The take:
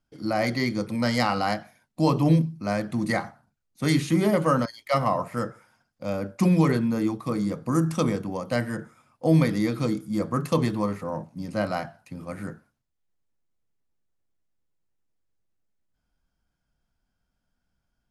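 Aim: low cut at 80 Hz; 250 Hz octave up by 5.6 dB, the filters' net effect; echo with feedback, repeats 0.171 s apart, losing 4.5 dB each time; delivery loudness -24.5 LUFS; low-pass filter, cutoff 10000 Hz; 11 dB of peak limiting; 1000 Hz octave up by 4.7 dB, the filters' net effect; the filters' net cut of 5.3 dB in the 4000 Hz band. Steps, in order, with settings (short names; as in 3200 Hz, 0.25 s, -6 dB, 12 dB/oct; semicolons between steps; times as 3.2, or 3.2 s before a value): HPF 80 Hz; LPF 10000 Hz; bell 250 Hz +7.5 dB; bell 1000 Hz +6 dB; bell 4000 Hz -7 dB; limiter -16 dBFS; feedback echo 0.171 s, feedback 60%, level -4.5 dB; gain -0.5 dB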